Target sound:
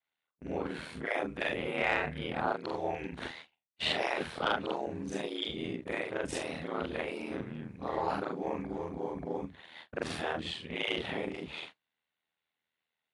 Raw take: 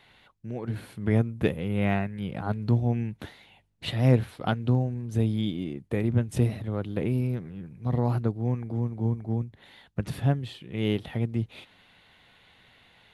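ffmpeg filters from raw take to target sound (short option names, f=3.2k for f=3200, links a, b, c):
-filter_complex "[0:a]afftfilt=real='re':imag='-im':win_size=4096:overlap=0.75,afftfilt=real='re*lt(hypot(re,im),0.112)':imag='im*lt(hypot(re,im),0.112)':win_size=1024:overlap=0.75,highpass=f=110:w=0.5412,highpass=f=110:w=1.3066,highshelf=f=6.1k:g=-2.5,aeval=exprs='val(0)*sin(2*PI*40*n/s)':c=same,agate=range=-35dB:threshold=-59dB:ratio=16:detection=peak,asplit=2[a][b];[b]highpass=f=720:p=1,volume=8dB,asoftclip=type=tanh:threshold=-23dB[c];[a][c]amix=inputs=2:normalize=0,lowpass=f=5.4k:p=1,volume=-6dB,volume=9dB" -ar 22050 -c:a aac -b:a 48k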